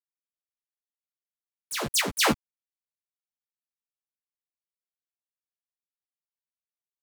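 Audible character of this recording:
chopped level 3.2 Hz, depth 65%, duty 40%
a quantiser's noise floor 8 bits, dither none
a shimmering, thickened sound

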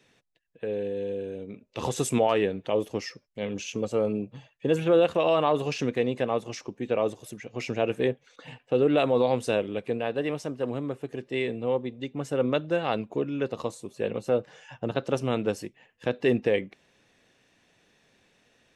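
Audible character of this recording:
background noise floor −66 dBFS
spectral slope −5.0 dB per octave

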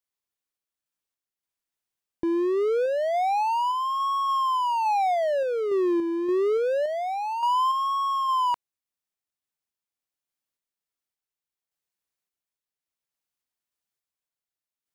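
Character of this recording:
sample-and-hold tremolo 3.5 Hz, depth 55%

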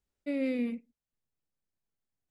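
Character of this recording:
background noise floor −93 dBFS
spectral slope −3.5 dB per octave

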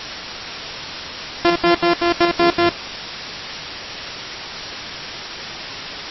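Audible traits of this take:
a buzz of ramps at a fixed pitch in blocks of 128 samples
tremolo saw up 4 Hz, depth 50%
a quantiser's noise floor 6 bits, dither triangular
MP3

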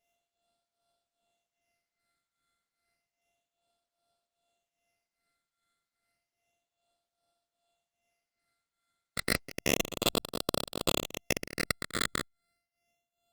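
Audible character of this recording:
a buzz of ramps at a fixed pitch in blocks of 64 samples
tremolo triangle 2.5 Hz, depth 90%
phaser sweep stages 8, 0.31 Hz, lowest notch 800–2,100 Hz
Opus

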